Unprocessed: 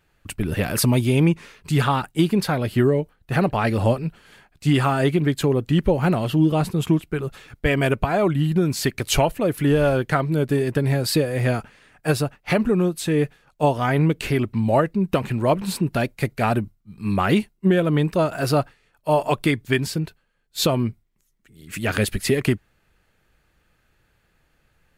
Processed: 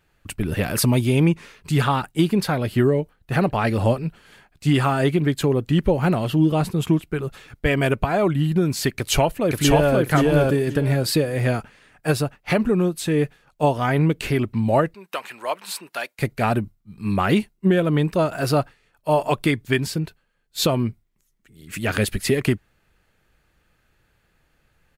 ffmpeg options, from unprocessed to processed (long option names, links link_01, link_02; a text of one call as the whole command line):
ffmpeg -i in.wav -filter_complex "[0:a]asplit=2[link_01][link_02];[link_02]afade=type=in:start_time=8.97:duration=0.01,afade=type=out:start_time=9.97:duration=0.01,aecho=0:1:530|1060|1590:0.944061|0.188812|0.0377624[link_03];[link_01][link_03]amix=inputs=2:normalize=0,asettb=1/sr,asplit=3[link_04][link_05][link_06];[link_04]atrim=end=14.944[link_07];[link_05]atrim=start=14.94:end=16.19,asetpts=PTS-STARTPTS,afade=type=in:duration=0.004:curve=qsin,afade=type=out:start_time=1.246:duration=0.004:curve=qsin,highpass=890[link_08];[link_06]atrim=start=16.186[link_09];[link_07][link_08]acrossfade=duration=0.004:curve1=hsin:curve2=qsin[link_10];[link_10][link_09]acrossfade=duration=0.004:curve1=qsin:curve2=hsin" out.wav